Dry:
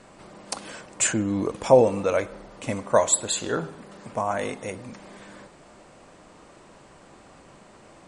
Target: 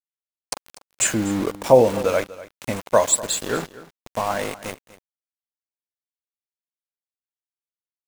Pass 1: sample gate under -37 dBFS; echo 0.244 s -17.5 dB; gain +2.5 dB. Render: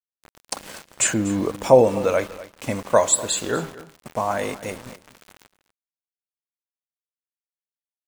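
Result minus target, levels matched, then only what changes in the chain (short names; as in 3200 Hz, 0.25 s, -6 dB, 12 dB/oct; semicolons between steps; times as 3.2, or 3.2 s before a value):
sample gate: distortion -6 dB
change: sample gate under -29.5 dBFS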